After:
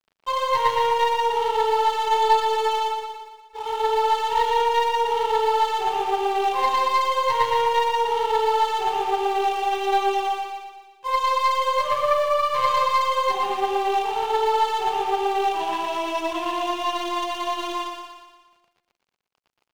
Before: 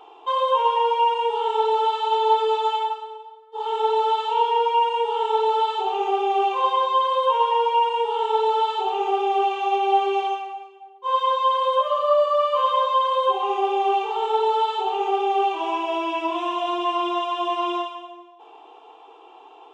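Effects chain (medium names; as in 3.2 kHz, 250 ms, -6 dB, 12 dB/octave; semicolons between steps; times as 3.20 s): tracing distortion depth 0.096 ms; bass shelf 420 Hz -4.5 dB; companded quantiser 8-bit; crossover distortion -40 dBFS; on a send: feedback delay 118 ms, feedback 54%, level -5.5 dB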